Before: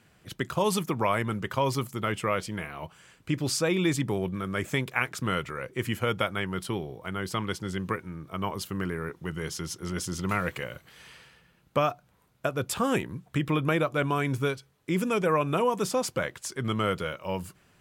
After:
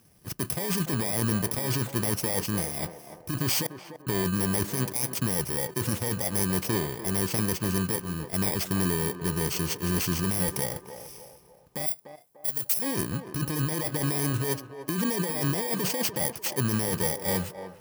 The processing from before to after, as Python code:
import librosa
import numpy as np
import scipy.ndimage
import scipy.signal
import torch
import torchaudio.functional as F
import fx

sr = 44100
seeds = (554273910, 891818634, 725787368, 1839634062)

y = fx.bit_reversed(x, sr, seeds[0], block=32)
y = fx.gate_flip(y, sr, shuts_db=-22.0, range_db=-33, at=(3.66, 4.07))
y = fx.over_compress(y, sr, threshold_db=-30.0, ratio=-1.0)
y = fx.leveller(y, sr, passes=1)
y = fx.pre_emphasis(y, sr, coefficient=0.8, at=(11.86, 12.82))
y = fx.echo_banded(y, sr, ms=295, feedback_pct=48, hz=650.0, wet_db=-8)